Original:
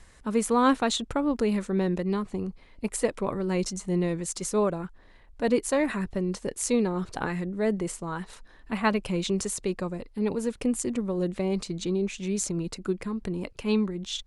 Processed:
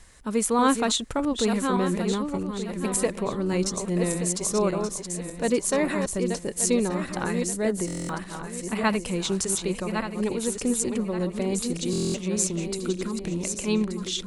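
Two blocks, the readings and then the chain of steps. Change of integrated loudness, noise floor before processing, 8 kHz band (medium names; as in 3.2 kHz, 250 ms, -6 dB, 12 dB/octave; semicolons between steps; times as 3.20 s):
+2.0 dB, -54 dBFS, +7.0 dB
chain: backward echo that repeats 589 ms, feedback 55%, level -6 dB; treble shelf 4.8 kHz +8 dB; buffer glitch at 7.86/11.91 s, samples 1024, times 9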